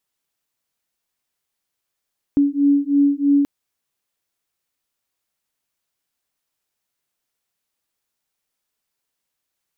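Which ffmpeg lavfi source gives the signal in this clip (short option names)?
-f lavfi -i "aevalsrc='0.15*(sin(2*PI*282*t)+sin(2*PI*285.1*t))':d=1.08:s=44100"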